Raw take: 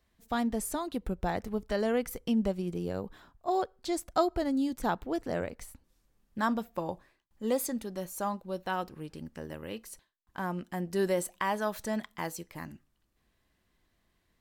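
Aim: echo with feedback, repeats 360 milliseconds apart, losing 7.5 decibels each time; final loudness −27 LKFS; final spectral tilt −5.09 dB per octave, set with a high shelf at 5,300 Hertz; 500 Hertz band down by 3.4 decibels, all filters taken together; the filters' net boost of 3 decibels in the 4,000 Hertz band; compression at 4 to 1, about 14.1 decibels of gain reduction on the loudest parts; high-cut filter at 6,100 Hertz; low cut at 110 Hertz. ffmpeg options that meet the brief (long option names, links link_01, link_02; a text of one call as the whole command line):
ffmpeg -i in.wav -af "highpass=110,lowpass=6100,equalizer=frequency=500:width_type=o:gain=-4.5,equalizer=frequency=4000:width_type=o:gain=6.5,highshelf=frequency=5300:gain=-5,acompressor=threshold=-41dB:ratio=4,aecho=1:1:360|720|1080|1440|1800:0.422|0.177|0.0744|0.0312|0.0131,volume=17.5dB" out.wav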